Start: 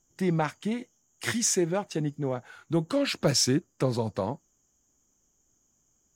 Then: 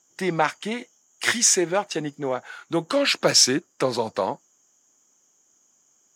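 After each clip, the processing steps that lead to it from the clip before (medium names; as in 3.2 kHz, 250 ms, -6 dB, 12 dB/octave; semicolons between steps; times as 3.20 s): frequency weighting A; trim +8.5 dB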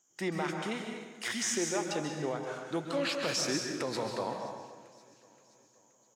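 peak limiter -16 dBFS, peak gain reduction 11 dB; feedback delay 525 ms, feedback 55%, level -23 dB; plate-style reverb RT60 1.2 s, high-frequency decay 0.8×, pre-delay 120 ms, DRR 2.5 dB; trim -8 dB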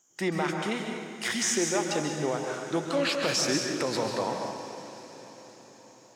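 echo that smears into a reverb 497 ms, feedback 56%, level -14.5 dB; trim +5 dB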